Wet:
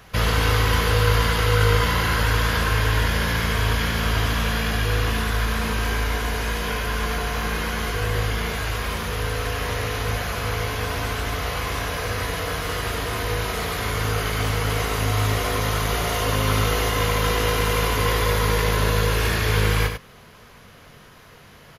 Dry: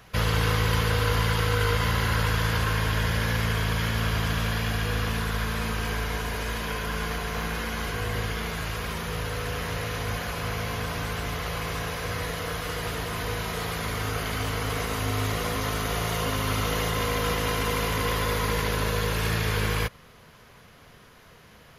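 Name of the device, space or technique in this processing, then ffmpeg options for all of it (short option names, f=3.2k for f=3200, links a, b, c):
slapback doubling: -filter_complex "[0:a]asplit=3[a][b][c];[b]adelay=21,volume=-9dB[d];[c]adelay=95,volume=-7dB[e];[a][d][e]amix=inputs=3:normalize=0,volume=3.5dB"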